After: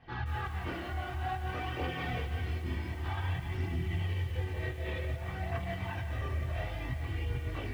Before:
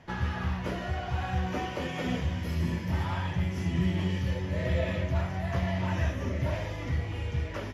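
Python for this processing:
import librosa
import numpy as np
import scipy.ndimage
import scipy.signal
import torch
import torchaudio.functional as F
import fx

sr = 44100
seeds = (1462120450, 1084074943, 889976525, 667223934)

y = scipy.signal.sosfilt(scipy.signal.butter(4, 4100.0, 'lowpass', fs=sr, output='sos'), x)
y = fx.peak_eq(y, sr, hz=410.0, db=-4.5, octaves=0.88)
y = y + 0.63 * np.pad(y, (int(2.6 * sr / 1000.0), 0))[:len(y)]
y = fx.over_compress(y, sr, threshold_db=-31.0, ratio=-1.0)
y = fx.chorus_voices(y, sr, voices=2, hz=0.27, base_ms=25, depth_ms=1.8, mix_pct=60)
y = fx.echo_feedback(y, sr, ms=381, feedback_pct=57, wet_db=-15.0)
y = fx.echo_crushed(y, sr, ms=176, feedback_pct=35, bits=8, wet_db=-10)
y = y * 10.0 ** (-2.0 / 20.0)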